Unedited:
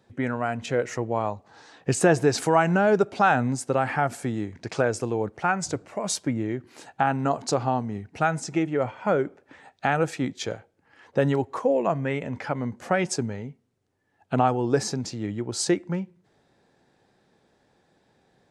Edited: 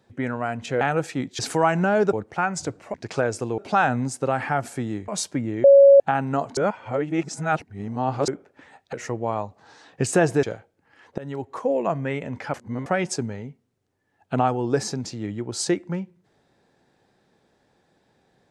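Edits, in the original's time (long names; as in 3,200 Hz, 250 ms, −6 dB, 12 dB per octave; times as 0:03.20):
0:00.81–0:02.31: swap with 0:09.85–0:10.43
0:03.05–0:04.55: swap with 0:05.19–0:06.00
0:06.56–0:06.92: beep over 556 Hz −7.5 dBFS
0:07.49–0:09.20: reverse
0:11.18–0:11.89: fade in equal-power, from −22 dB
0:12.54–0:12.86: reverse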